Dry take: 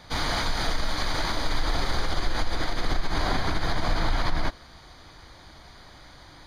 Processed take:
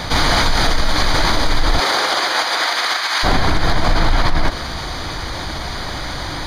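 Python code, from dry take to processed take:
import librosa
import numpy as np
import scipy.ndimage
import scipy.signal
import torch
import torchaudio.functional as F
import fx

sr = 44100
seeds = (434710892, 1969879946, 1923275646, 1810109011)

y = fx.highpass(x, sr, hz=fx.line((1.78, 390.0), (3.23, 1400.0)), slope=12, at=(1.78, 3.23), fade=0.02)
y = 10.0 ** (-14.5 / 20.0) * (np.abs((y / 10.0 ** (-14.5 / 20.0) + 3.0) % 4.0 - 2.0) - 1.0)
y = fx.env_flatten(y, sr, amount_pct=50)
y = y * 10.0 ** (8.5 / 20.0)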